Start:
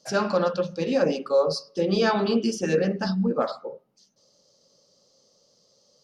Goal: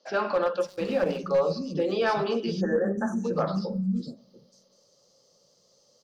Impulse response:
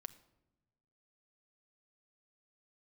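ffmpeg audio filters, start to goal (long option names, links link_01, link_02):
-filter_complex "[0:a]acrossover=split=250|4600[link_01][link_02][link_03];[link_03]adelay=550[link_04];[link_01]adelay=690[link_05];[link_05][link_02][link_04]amix=inputs=3:normalize=0,asplit=3[link_06][link_07][link_08];[link_06]afade=type=out:start_time=0.64:duration=0.02[link_09];[link_07]aeval=exprs='sgn(val(0))*max(abs(val(0))-0.00841,0)':channel_layout=same,afade=type=in:start_time=0.64:duration=0.02,afade=type=out:start_time=1.17:duration=0.02[link_10];[link_08]afade=type=in:start_time=1.17:duration=0.02[link_11];[link_09][link_10][link_11]amix=inputs=3:normalize=0,asplit=2[link_12][link_13];[1:a]atrim=start_sample=2205,highshelf=frequency=7800:gain=9.5[link_14];[link_13][link_14]afir=irnorm=-1:irlink=0,volume=-2dB[link_15];[link_12][link_15]amix=inputs=2:normalize=0,aeval=exprs='clip(val(0),-1,0.237)':channel_layout=same,acrossover=split=4600[link_16][link_17];[link_17]acompressor=threshold=-50dB:ratio=4:attack=1:release=60[link_18];[link_16][link_18]amix=inputs=2:normalize=0,asplit=3[link_19][link_20][link_21];[link_19]afade=type=out:start_time=2.6:duration=0.02[link_22];[link_20]asuperstop=centerf=3400:order=20:qfactor=0.79,afade=type=in:start_time=2.6:duration=0.02,afade=type=out:start_time=3.23:duration=0.02[link_23];[link_21]afade=type=in:start_time=3.23:duration=0.02[link_24];[link_22][link_23][link_24]amix=inputs=3:normalize=0,asplit=2[link_25][link_26];[link_26]alimiter=limit=-17.5dB:level=0:latency=1:release=102,volume=-1.5dB[link_27];[link_25][link_27]amix=inputs=2:normalize=0,volume=-8dB"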